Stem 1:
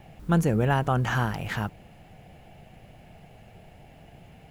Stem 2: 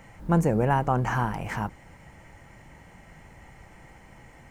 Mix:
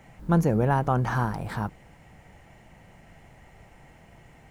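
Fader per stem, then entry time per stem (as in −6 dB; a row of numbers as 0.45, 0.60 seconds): −6.0, −4.5 decibels; 0.00, 0.00 seconds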